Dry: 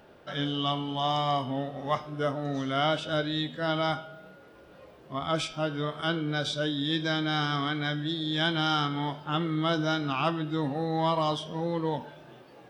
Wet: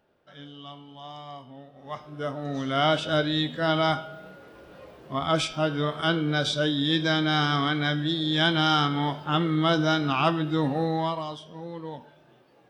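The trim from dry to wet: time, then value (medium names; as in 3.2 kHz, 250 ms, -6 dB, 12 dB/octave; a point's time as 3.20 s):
1.72 s -14 dB
2.05 s -4.5 dB
2.93 s +4.5 dB
10.86 s +4.5 dB
11.28 s -7.5 dB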